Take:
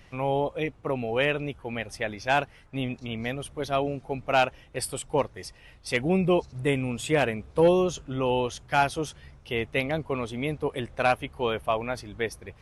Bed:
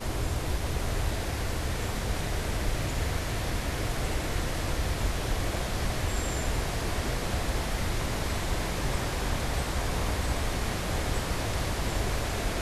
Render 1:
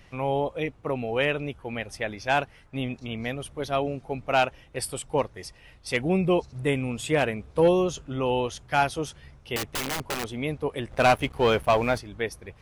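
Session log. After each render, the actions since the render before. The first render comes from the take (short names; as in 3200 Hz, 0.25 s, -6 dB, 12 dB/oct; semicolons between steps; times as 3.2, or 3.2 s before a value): 9.56–10.25 wrapped overs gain 24 dB; 10.91–11.98 sample leveller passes 2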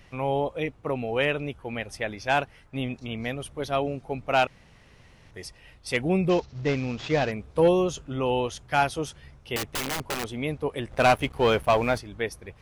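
4.47–5.31 room tone; 6.29–7.32 CVSD 32 kbps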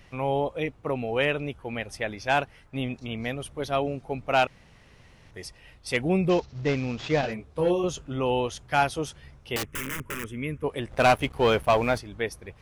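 7.21–7.84 detuned doubles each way 29 cents; 9.65–10.64 fixed phaser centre 1800 Hz, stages 4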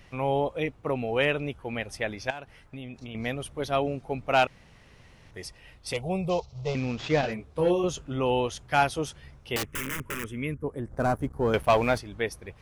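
2.3–3.15 compressor, threshold -36 dBFS; 5.93–6.75 fixed phaser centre 700 Hz, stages 4; 10.54–11.54 EQ curve 270 Hz 0 dB, 640 Hz -7 dB, 1600 Hz -8 dB, 2700 Hz -26 dB, 7200 Hz -9 dB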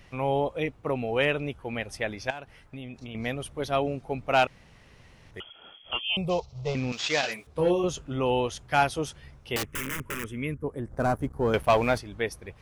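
5.4–6.17 inverted band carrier 3300 Hz; 6.92–7.47 tilt +4.5 dB/oct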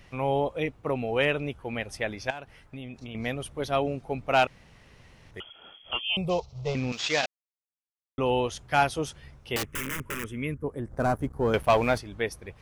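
7.26–8.18 mute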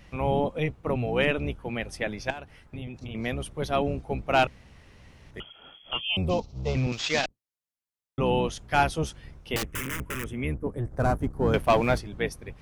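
octaver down 1 oct, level +1 dB; vibrato 1.4 Hz 11 cents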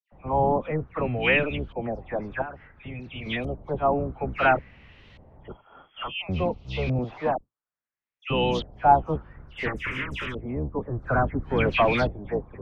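dispersion lows, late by 0.123 s, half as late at 2500 Hz; LFO low-pass saw up 0.58 Hz 640–3700 Hz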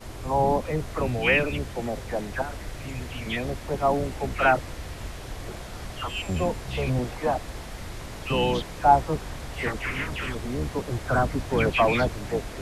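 add bed -7.5 dB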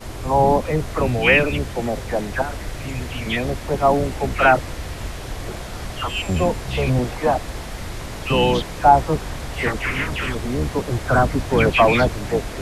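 gain +6.5 dB; limiter -2 dBFS, peak gain reduction 2.5 dB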